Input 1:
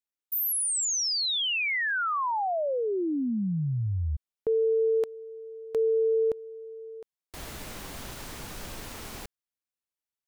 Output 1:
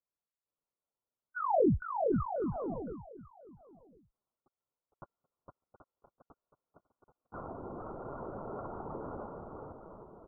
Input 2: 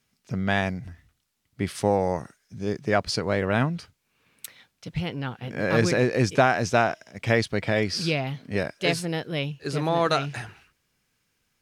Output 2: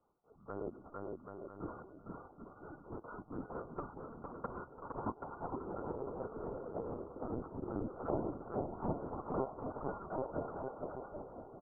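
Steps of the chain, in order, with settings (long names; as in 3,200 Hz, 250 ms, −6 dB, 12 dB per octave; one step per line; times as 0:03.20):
neighbouring bands swapped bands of 2,000 Hz
reversed playback
downward compressor 16 to 1, threshold −34 dBFS
reversed playback
linear-phase brick-wall low-pass 1,500 Hz
treble cut that deepens with the level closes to 620 Hz, closed at −48 dBFS
on a send: bouncing-ball delay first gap 460 ms, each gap 0.7×, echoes 5
on the sum: linear-prediction vocoder at 8 kHz pitch kept
automatic gain control gain up to 8 dB
low-shelf EQ 97 Hz −11 dB
single-tap delay 1,049 ms −21 dB
low-pass that shuts in the quiet parts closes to 1,100 Hz, open at −35.5 dBFS
level +4.5 dB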